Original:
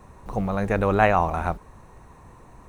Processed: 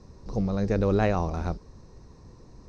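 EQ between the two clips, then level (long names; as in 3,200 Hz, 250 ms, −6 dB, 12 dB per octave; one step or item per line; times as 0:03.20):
low-pass with resonance 5,100 Hz, resonance Q 5.2
high-frequency loss of the air 57 metres
flat-topped bell 1,500 Hz −11 dB 2.7 octaves
0.0 dB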